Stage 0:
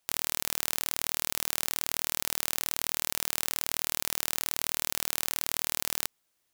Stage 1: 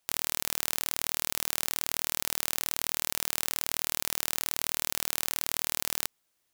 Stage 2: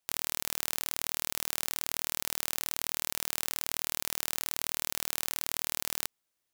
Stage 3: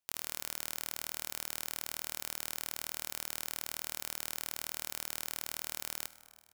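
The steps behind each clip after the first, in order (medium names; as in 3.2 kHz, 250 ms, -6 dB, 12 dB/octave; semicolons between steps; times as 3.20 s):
no audible change
waveshaping leveller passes 2; trim -2.5 dB
feedback delay 333 ms, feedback 55%, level -20.5 dB; reverberation RT60 1.7 s, pre-delay 58 ms, DRR 17 dB; trim -6 dB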